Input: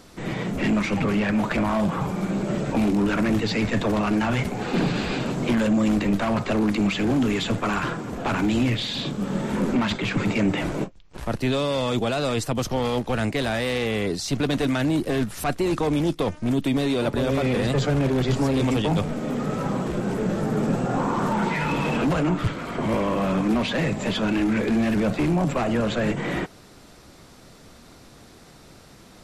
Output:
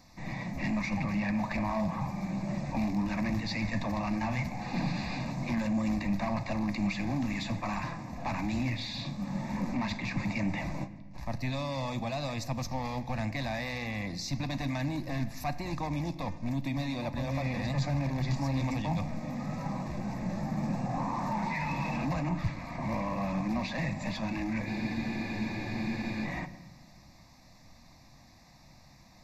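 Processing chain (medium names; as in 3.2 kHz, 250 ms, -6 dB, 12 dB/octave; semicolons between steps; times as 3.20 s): static phaser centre 2.1 kHz, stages 8; on a send at -13 dB: reverberation RT60 1.4 s, pre-delay 14 ms; on the sum: spectral freeze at 24.68 s, 1.56 s; trim -6 dB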